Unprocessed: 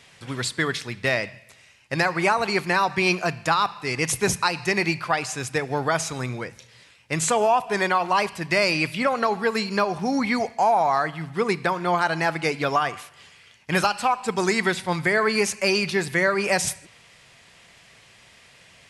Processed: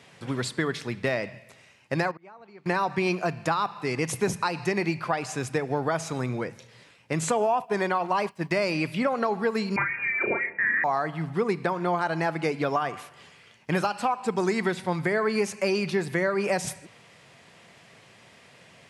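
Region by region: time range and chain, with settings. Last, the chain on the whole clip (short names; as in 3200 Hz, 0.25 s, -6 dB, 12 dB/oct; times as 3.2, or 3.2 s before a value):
2.11–2.66 flipped gate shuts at -16 dBFS, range -27 dB + compressor 5:1, threshold -42 dBFS + air absorption 130 m
7.13–8.51 expander -29 dBFS + requantised 12-bit, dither none
9.76–10.84 doubler 35 ms -4.5 dB + inverted band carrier 2600 Hz
whole clip: HPF 130 Hz; tilt shelf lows +5 dB, about 1300 Hz; compressor 2:1, threshold -26 dBFS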